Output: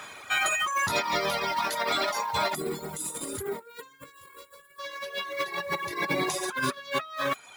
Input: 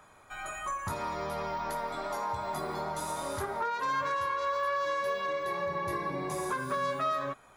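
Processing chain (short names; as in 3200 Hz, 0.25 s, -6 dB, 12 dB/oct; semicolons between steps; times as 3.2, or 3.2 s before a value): weighting filter D; modulation noise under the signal 21 dB; negative-ratio compressor -35 dBFS, ratio -0.5; reverb removal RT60 1.2 s; spectral gain 2.55–4.79, 530–6800 Hz -15 dB; gain +8 dB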